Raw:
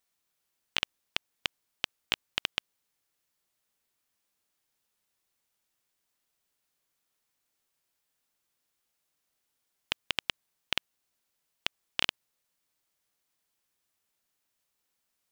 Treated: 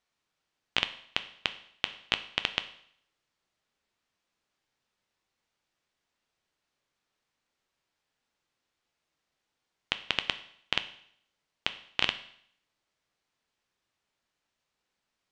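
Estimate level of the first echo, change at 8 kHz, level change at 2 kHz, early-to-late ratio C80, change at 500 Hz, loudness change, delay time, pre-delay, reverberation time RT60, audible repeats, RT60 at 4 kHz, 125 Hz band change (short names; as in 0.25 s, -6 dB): none, -4.5 dB, +2.5 dB, 17.0 dB, +3.5 dB, +2.0 dB, none, 9 ms, 0.65 s, none, 0.65 s, +3.5 dB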